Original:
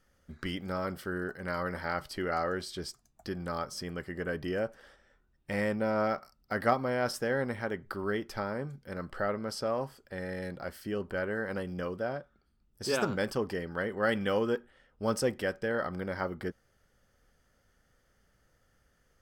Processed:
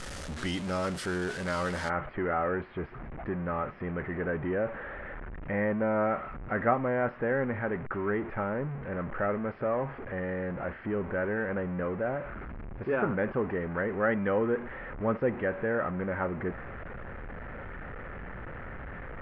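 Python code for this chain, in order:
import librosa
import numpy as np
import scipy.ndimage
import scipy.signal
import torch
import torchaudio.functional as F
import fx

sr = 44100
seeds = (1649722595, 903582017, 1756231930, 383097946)

y = x + 0.5 * 10.0 ** (-33.5 / 20.0) * np.sign(x)
y = fx.steep_lowpass(y, sr, hz=fx.steps((0.0, 10000.0), (1.88, 2200.0)), slope=36)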